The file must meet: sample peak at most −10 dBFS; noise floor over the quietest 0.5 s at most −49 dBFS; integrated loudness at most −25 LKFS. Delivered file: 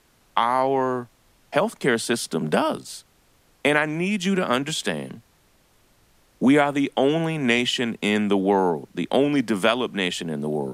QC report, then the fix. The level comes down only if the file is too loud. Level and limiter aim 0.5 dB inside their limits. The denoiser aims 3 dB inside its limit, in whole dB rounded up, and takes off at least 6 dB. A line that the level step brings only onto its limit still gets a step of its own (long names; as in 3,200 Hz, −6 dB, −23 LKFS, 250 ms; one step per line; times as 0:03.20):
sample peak −4.5 dBFS: out of spec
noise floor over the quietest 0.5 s −60 dBFS: in spec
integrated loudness −22.5 LKFS: out of spec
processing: level −3 dB
brickwall limiter −10.5 dBFS